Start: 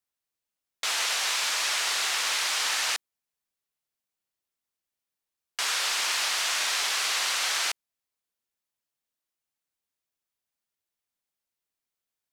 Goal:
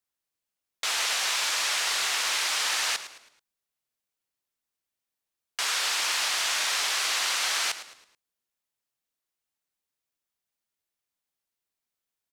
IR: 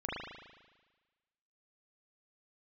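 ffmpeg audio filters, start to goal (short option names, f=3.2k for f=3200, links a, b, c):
-filter_complex "[0:a]asplit=5[a][b][c][d][e];[b]adelay=108,afreqshift=-85,volume=-13.5dB[f];[c]adelay=216,afreqshift=-170,volume=-21.7dB[g];[d]adelay=324,afreqshift=-255,volume=-29.9dB[h];[e]adelay=432,afreqshift=-340,volume=-38dB[i];[a][f][g][h][i]amix=inputs=5:normalize=0"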